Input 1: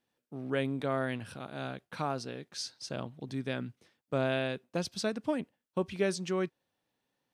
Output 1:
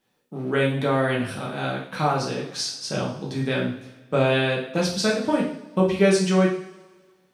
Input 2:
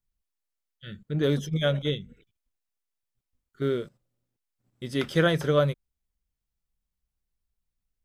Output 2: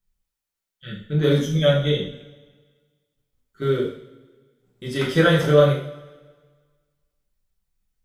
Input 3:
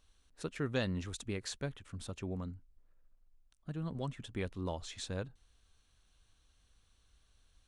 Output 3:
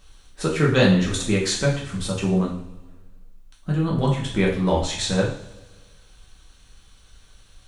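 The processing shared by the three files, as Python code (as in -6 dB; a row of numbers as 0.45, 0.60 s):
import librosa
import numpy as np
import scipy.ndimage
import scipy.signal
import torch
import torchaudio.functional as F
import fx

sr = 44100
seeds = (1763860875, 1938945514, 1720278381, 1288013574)

y = fx.rev_double_slope(x, sr, seeds[0], early_s=0.53, late_s=1.6, knee_db=-17, drr_db=-4.0)
y = y * 10.0 ** (-24 / 20.0) / np.sqrt(np.mean(np.square(y)))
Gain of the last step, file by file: +6.5, +1.0, +13.0 dB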